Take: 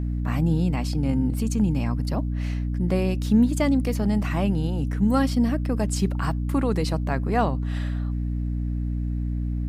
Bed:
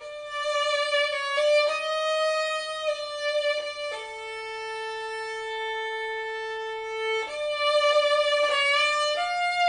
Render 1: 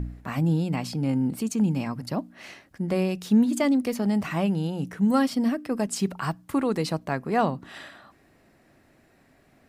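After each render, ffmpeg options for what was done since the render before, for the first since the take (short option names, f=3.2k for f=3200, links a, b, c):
-af "bandreject=f=60:t=h:w=4,bandreject=f=120:t=h:w=4,bandreject=f=180:t=h:w=4,bandreject=f=240:t=h:w=4,bandreject=f=300:t=h:w=4"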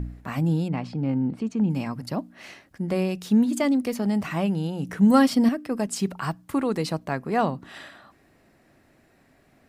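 -filter_complex "[0:a]asettb=1/sr,asplit=3[a][b][c];[a]atrim=end=0.684[d];[b]atrim=start=0.68:end=1.7,asetpts=PTS-STARTPTS,afade=t=in:d=0.004:c=qsin,afade=t=out:st=1.016:d=0.004:c=qsin,adynamicsmooth=sensitivity=0.5:basefreq=2.9k[e];[c]atrim=start=1.696[f];[d][e]acrossfade=d=0.004:c1=hsin:c2=qsin[g];[g][f]acrossfade=d=0.004:c1=qsin:c2=hsin,asettb=1/sr,asplit=3[h][i][j];[h]atrim=end=4.894[k];[i]atrim=start=4.89:end=5.49,asetpts=PTS-STARTPTS,afade=t=in:d=0.004:c=qsin,afade=t=out:st=0.596:d=0.004:c=qsin,acontrast=23[l];[j]atrim=start=5.486[m];[k][l]acrossfade=d=0.004:c1=hsin:c2=qsin[n];[n][m]acrossfade=d=0.004:c1=qsin:c2=hsin"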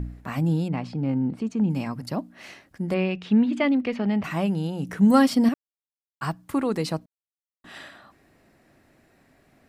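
-filter_complex "[0:a]asettb=1/sr,asplit=3[a][b][c];[a]atrim=end=2.944[d];[b]atrim=start=2.94:end=4.24,asetpts=PTS-STARTPTS,afade=t=in:d=0.004:c=qsin,afade=t=out:st=1.296:d=0.004:c=qsin,lowpass=f=2.7k:t=q:w=1.9[e];[c]atrim=start=4.236[f];[d][e]acrossfade=d=0.004:c1=hsin:c2=qsin[g];[g][f]acrossfade=d=0.004:c1=qsin:c2=hsin,asplit=5[h][i][j][k][l];[h]atrim=end=5.54,asetpts=PTS-STARTPTS,afade=t=out:st=5.536:d=0.004:c=hsin[m];[i]atrim=start=5.54:end=6.21,asetpts=PTS-STARTPTS,volume=0[n];[j]atrim=start=6.21:end=7.06,asetpts=PTS-STARTPTS,afade=t=in:d=0.004:c=hsin,afade=t=out:st=0.846:d=0.004:c=hsin[o];[k]atrim=start=7.06:end=7.64,asetpts=PTS-STARTPTS,volume=0[p];[l]atrim=start=7.64,asetpts=PTS-STARTPTS,afade=t=in:d=0.004:c=hsin[q];[m][n][o][p][q]concat=n=5:v=0:a=1"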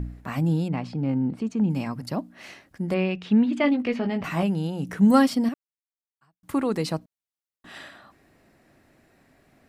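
-filter_complex "[0:a]asettb=1/sr,asplit=3[a][b][c];[a]atrim=end=3.624[d];[b]atrim=start=3.62:end=4.43,asetpts=PTS-STARTPTS,afade=t=in:d=0.004:c=qsin,afade=t=out:st=0.806:d=0.004:c=qsin,asplit=2[e][f];[f]adelay=17,volume=-5.5dB[g];[e][g]amix=inputs=2:normalize=0,atrim=end_sample=35721[h];[c]atrim=start=4.426[i];[d][h]acrossfade=d=0.004:c1=hsin:c2=qsin[j];[j][i]acrossfade=d=0.004:c1=qsin:c2=hsin,asplit=2[k][l];[k]atrim=end=6.43,asetpts=PTS-STARTPTS,afade=t=out:st=5.17:d=1.26:c=qua[m];[l]atrim=start=6.43,asetpts=PTS-STARTPTS,afade=t=in:d=0.004:c=hsin[n];[m][n]concat=n=2:v=0:a=1"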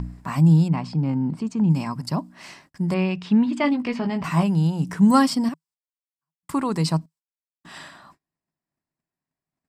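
-af "agate=range=-33dB:threshold=-54dB:ratio=16:detection=peak,equalizer=f=160:t=o:w=0.33:g=10,equalizer=f=500:t=o:w=0.33:g=-5,equalizer=f=1k:t=o:w=0.33:g=10,equalizer=f=5k:t=o:w=0.33:g=8,equalizer=f=8k:t=o:w=0.33:g=9"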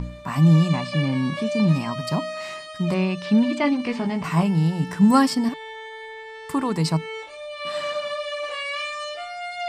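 -filter_complex "[1:a]volume=-6.5dB[a];[0:a][a]amix=inputs=2:normalize=0"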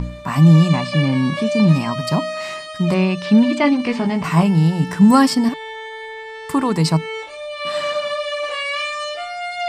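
-af "volume=5.5dB,alimiter=limit=-3dB:level=0:latency=1"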